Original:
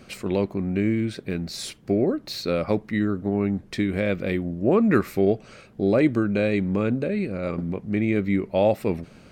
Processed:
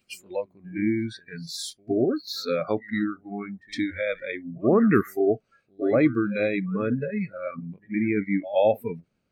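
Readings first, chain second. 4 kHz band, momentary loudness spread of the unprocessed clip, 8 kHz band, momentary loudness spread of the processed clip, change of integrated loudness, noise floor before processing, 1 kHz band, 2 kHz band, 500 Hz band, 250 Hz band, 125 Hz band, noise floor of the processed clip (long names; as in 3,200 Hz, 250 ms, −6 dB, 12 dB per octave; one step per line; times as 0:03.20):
−0.5 dB, 8 LU, can't be measured, 14 LU, −2.0 dB, −50 dBFS, −0.5 dB, −0.5 dB, −1.5 dB, −2.5 dB, −6.0 dB, −73 dBFS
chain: echo ahead of the sound 113 ms −12 dB
noise reduction from a noise print of the clip's start 27 dB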